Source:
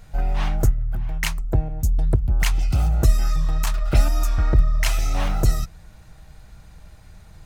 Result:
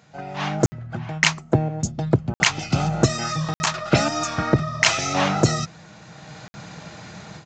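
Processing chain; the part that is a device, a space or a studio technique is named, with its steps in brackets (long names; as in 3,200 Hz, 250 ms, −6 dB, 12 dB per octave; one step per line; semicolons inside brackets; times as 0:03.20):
call with lost packets (high-pass filter 140 Hz 24 dB per octave; downsampling to 16,000 Hz; automatic gain control gain up to 16.5 dB; dropped packets of 60 ms random)
level −1 dB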